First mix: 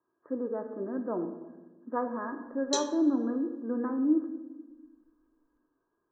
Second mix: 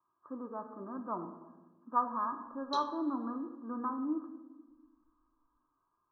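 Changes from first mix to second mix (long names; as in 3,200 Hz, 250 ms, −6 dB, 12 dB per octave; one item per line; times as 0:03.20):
background: add high-frequency loss of the air 380 metres
master: add drawn EQ curve 110 Hz 0 dB, 480 Hz −14 dB, 1,200 Hz +9 dB, 2,000 Hz −21 dB, 4,000 Hz +5 dB, 7,700 Hz −2 dB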